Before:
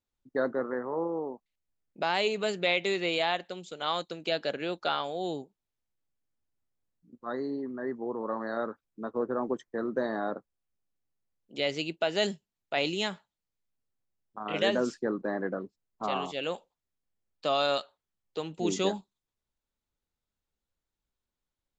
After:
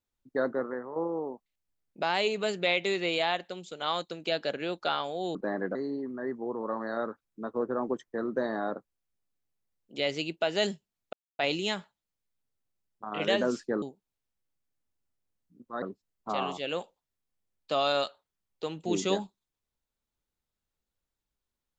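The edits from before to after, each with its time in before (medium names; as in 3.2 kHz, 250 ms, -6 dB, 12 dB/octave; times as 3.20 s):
0.58–0.96 s: fade out, to -8 dB
5.35–7.35 s: swap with 15.16–15.56 s
12.73 s: insert silence 0.26 s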